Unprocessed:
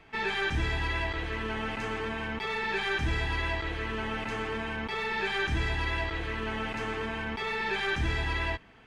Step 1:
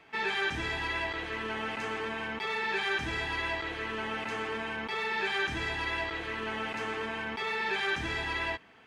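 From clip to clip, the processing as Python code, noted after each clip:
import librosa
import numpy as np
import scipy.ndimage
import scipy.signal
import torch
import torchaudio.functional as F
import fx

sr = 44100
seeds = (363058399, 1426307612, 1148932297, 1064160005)

y = fx.highpass(x, sr, hz=280.0, slope=6)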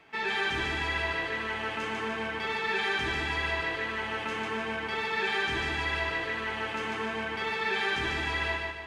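y = fx.echo_feedback(x, sr, ms=147, feedback_pct=48, wet_db=-3.0)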